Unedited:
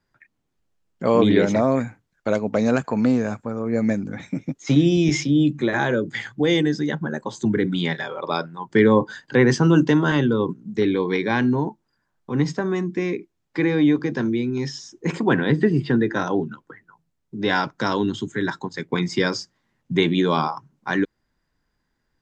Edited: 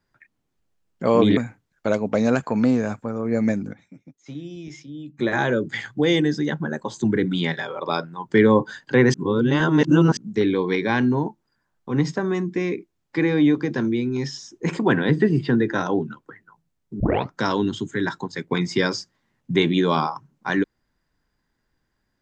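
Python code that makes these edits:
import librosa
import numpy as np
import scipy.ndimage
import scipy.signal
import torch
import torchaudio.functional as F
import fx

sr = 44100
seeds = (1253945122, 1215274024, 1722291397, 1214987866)

y = fx.edit(x, sr, fx.cut(start_s=1.37, length_s=0.41),
    fx.fade_down_up(start_s=3.91, length_s=1.92, db=-18.5, fade_s=0.23, curve='log'),
    fx.reverse_span(start_s=9.55, length_s=1.03),
    fx.tape_start(start_s=17.41, length_s=0.3), tone=tone)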